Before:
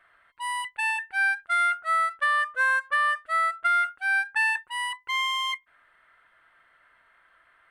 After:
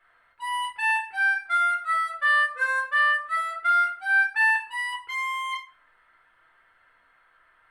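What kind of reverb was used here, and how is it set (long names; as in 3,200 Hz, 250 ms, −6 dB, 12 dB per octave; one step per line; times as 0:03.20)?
rectangular room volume 400 cubic metres, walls furnished, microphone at 4.1 metres
level −7 dB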